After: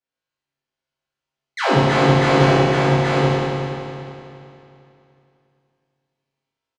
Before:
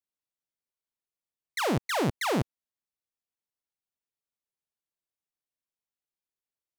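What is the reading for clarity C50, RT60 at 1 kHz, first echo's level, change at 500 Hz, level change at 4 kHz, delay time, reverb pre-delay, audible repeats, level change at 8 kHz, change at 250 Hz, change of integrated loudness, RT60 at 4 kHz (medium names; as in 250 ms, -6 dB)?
-6.5 dB, 2.8 s, -3.0 dB, +16.0 dB, +12.0 dB, 828 ms, 7 ms, 1, +4.5 dB, +14.0 dB, +12.5 dB, 2.6 s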